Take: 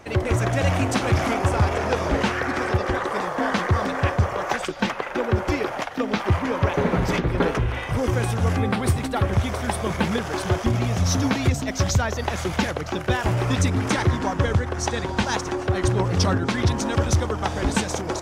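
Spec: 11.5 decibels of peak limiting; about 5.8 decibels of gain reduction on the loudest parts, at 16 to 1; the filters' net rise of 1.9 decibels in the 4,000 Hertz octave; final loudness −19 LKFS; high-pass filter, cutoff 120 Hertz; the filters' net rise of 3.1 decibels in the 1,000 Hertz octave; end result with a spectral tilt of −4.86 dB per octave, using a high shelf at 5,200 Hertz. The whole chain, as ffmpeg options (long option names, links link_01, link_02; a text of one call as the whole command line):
ffmpeg -i in.wav -af "highpass=120,equalizer=frequency=1000:width_type=o:gain=4,equalizer=frequency=4000:width_type=o:gain=4.5,highshelf=frequency=5200:gain=-5,acompressor=threshold=-22dB:ratio=16,volume=12.5dB,alimiter=limit=-10dB:level=0:latency=1" out.wav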